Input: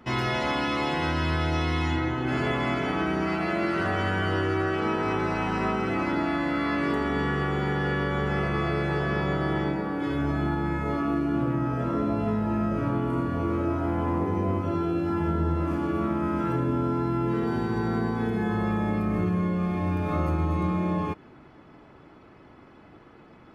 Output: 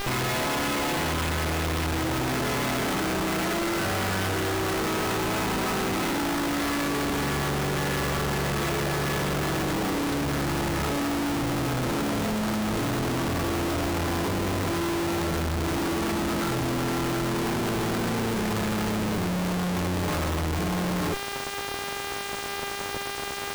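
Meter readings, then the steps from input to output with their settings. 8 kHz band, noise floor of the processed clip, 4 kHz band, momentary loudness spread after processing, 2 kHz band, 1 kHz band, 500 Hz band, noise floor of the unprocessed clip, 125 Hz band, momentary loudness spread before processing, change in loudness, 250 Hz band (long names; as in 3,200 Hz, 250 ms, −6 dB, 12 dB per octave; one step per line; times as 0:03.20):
can't be measured, −33 dBFS, +7.5 dB, 1 LU, +2.0 dB, +0.5 dB, 0.0 dB, −51 dBFS, −1.5 dB, 1 LU, 0.0 dB, −1.5 dB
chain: hum with harmonics 400 Hz, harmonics 33, −43 dBFS −4 dB per octave
comparator with hysteresis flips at −38.5 dBFS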